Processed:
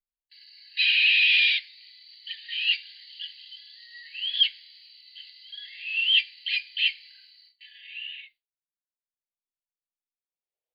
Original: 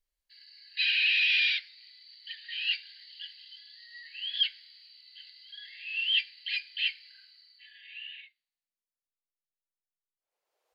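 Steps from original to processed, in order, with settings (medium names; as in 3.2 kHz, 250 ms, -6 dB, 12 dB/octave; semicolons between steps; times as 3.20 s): gate with hold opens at -49 dBFS; static phaser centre 3 kHz, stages 4; trim +6 dB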